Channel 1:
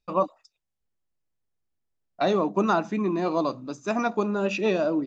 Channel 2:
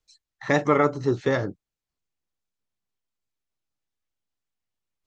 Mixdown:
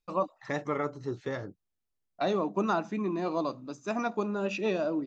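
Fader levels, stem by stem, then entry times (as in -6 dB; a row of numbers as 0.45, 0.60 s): -5.5, -11.5 dB; 0.00, 0.00 s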